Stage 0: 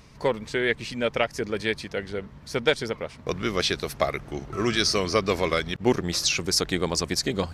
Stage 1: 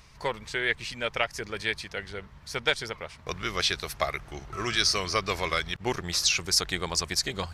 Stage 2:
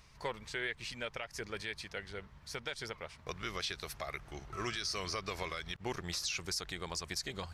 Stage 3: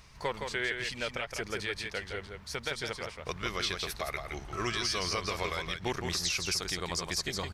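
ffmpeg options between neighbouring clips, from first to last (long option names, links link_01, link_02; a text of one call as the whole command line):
ffmpeg -i in.wav -af "equalizer=frequency=125:width_type=o:width=1:gain=-4,equalizer=frequency=250:width_type=o:width=1:gain=-11,equalizer=frequency=500:width_type=o:width=1:gain=-6" out.wav
ffmpeg -i in.wav -af "alimiter=limit=-20dB:level=0:latency=1:release=122,volume=-6.5dB" out.wav
ffmpeg -i in.wav -af "aecho=1:1:166:0.531,volume=5dB" out.wav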